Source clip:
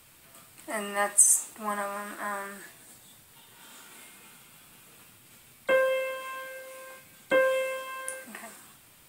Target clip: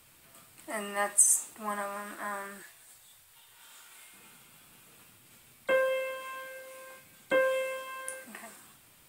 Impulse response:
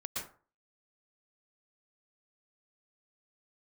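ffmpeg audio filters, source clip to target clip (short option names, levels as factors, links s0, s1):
-filter_complex "[0:a]asettb=1/sr,asplit=3[s0][s1][s2];[s0]atrim=end=2.624[s3];[s1]atrim=start=2.62:end=4.13,asetpts=PTS-STARTPTS,afade=t=in:d=0.004:c=qsin,afade=t=out:st=1.506:d=0.004:c=qsin,equalizer=f=230:w=0.66:g=-14.5[s4];[s2]atrim=start=4.126[s5];[s3][s4]acrossfade=d=0.004:c1=hsin:c2=qsin[s6];[s6][s5]acrossfade=d=0.004:c1=qsin:c2=hsin,volume=0.708"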